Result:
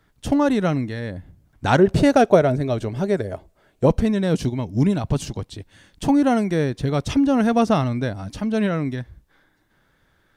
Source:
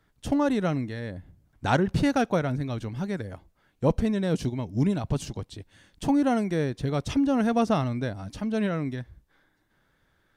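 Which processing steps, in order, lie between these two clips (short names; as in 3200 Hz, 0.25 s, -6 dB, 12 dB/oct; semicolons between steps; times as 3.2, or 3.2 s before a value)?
1.79–3.86 thirty-one-band EQ 400 Hz +9 dB, 630 Hz +11 dB, 8000 Hz +4 dB; gain +5.5 dB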